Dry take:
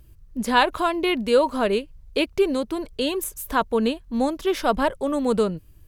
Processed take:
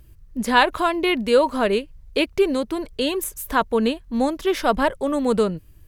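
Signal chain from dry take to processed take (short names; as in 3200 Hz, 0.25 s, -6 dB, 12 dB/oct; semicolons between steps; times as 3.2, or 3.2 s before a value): bell 1900 Hz +3 dB 0.53 oct; gain +1.5 dB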